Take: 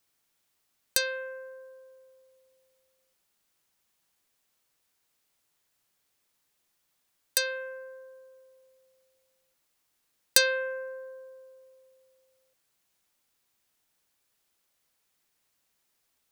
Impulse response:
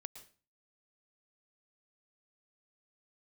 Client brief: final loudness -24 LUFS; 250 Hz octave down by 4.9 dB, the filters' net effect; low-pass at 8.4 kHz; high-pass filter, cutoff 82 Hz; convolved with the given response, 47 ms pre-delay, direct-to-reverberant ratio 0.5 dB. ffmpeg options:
-filter_complex "[0:a]highpass=82,lowpass=8400,equalizer=f=250:t=o:g=-7,asplit=2[s0][s1];[1:a]atrim=start_sample=2205,adelay=47[s2];[s1][s2]afir=irnorm=-1:irlink=0,volume=1.58[s3];[s0][s3]amix=inputs=2:normalize=0,volume=1.5"

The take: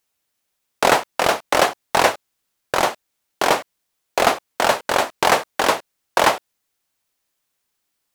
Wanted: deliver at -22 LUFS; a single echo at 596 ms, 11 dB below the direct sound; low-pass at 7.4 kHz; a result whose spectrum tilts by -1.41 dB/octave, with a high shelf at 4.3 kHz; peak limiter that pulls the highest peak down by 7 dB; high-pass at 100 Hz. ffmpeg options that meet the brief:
-af "highpass=100,lowpass=7400,highshelf=f=4300:g=5.5,alimiter=limit=0.447:level=0:latency=1,aecho=1:1:596:0.282,volume=1.06"

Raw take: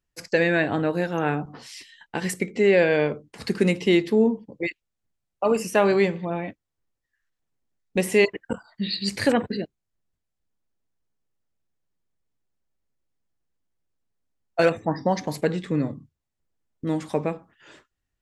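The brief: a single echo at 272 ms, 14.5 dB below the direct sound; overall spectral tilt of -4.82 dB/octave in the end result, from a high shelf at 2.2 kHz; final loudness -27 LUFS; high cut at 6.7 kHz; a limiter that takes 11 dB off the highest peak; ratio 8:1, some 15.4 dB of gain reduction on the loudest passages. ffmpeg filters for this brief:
-af "lowpass=6700,highshelf=f=2200:g=3.5,acompressor=threshold=0.0316:ratio=8,alimiter=level_in=1.06:limit=0.0631:level=0:latency=1,volume=0.944,aecho=1:1:272:0.188,volume=3.16"

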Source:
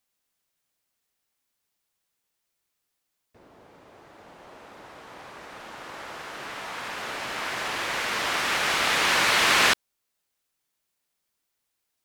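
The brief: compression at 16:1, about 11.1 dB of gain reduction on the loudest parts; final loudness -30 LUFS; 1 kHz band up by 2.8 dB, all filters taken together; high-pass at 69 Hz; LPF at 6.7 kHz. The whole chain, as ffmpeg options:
-af "highpass=69,lowpass=6700,equalizer=f=1000:t=o:g=3.5,acompressor=threshold=0.0501:ratio=16,volume=1.06"

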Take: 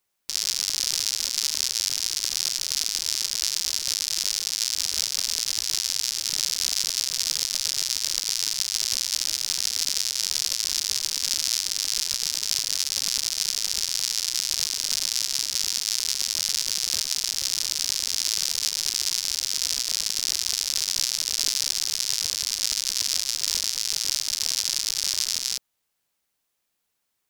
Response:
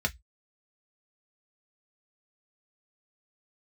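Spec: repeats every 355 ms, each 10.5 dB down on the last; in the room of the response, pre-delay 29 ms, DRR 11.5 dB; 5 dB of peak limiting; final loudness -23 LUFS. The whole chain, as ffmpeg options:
-filter_complex "[0:a]alimiter=limit=0.376:level=0:latency=1,aecho=1:1:355|710|1065:0.299|0.0896|0.0269,asplit=2[s0][s1];[1:a]atrim=start_sample=2205,adelay=29[s2];[s1][s2]afir=irnorm=-1:irlink=0,volume=0.112[s3];[s0][s3]amix=inputs=2:normalize=0,volume=1.33"

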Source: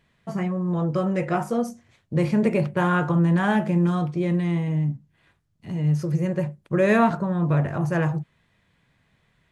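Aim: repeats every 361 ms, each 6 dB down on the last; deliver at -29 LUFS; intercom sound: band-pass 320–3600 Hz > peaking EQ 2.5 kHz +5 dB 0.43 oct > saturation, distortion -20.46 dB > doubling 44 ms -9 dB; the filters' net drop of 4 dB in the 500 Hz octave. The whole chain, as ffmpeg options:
-filter_complex "[0:a]highpass=320,lowpass=3600,equalizer=f=500:t=o:g=-4,equalizer=f=2500:t=o:w=0.43:g=5,aecho=1:1:361|722|1083|1444|1805|2166:0.501|0.251|0.125|0.0626|0.0313|0.0157,asoftclip=threshold=0.188,asplit=2[s0][s1];[s1]adelay=44,volume=0.355[s2];[s0][s2]amix=inputs=2:normalize=0,volume=0.944"

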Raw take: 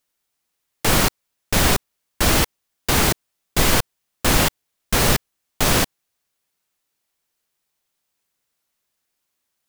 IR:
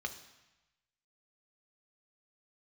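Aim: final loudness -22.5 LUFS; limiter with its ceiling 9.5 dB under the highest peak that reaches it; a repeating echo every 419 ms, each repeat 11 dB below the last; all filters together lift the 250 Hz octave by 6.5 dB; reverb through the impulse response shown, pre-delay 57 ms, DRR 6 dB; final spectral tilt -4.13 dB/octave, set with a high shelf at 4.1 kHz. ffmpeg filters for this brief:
-filter_complex "[0:a]equalizer=f=250:t=o:g=8.5,highshelf=f=4100:g=-3.5,alimiter=limit=0.251:level=0:latency=1,aecho=1:1:419|838|1257:0.282|0.0789|0.0221,asplit=2[s0][s1];[1:a]atrim=start_sample=2205,adelay=57[s2];[s1][s2]afir=irnorm=-1:irlink=0,volume=0.422[s3];[s0][s3]amix=inputs=2:normalize=0,volume=1.33"

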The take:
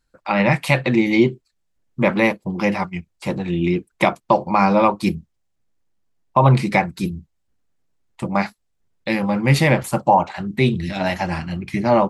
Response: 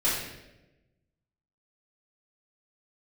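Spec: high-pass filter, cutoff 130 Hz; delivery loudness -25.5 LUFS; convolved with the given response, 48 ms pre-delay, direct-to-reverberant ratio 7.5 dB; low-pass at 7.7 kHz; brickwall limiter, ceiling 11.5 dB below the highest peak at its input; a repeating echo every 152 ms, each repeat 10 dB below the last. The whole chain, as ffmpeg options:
-filter_complex "[0:a]highpass=130,lowpass=7700,alimiter=limit=0.251:level=0:latency=1,aecho=1:1:152|304|456|608:0.316|0.101|0.0324|0.0104,asplit=2[s0][s1];[1:a]atrim=start_sample=2205,adelay=48[s2];[s1][s2]afir=irnorm=-1:irlink=0,volume=0.112[s3];[s0][s3]amix=inputs=2:normalize=0,volume=0.794"

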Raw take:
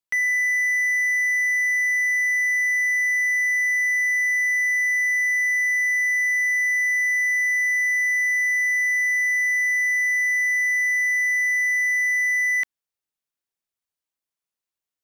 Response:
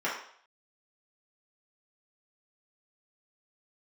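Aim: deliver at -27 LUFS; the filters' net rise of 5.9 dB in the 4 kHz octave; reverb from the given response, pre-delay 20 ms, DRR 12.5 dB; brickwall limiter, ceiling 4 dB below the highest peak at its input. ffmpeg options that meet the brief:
-filter_complex "[0:a]equalizer=f=4000:t=o:g=8.5,alimiter=limit=0.119:level=0:latency=1,asplit=2[s0][s1];[1:a]atrim=start_sample=2205,adelay=20[s2];[s1][s2]afir=irnorm=-1:irlink=0,volume=0.075[s3];[s0][s3]amix=inputs=2:normalize=0,volume=0.335"

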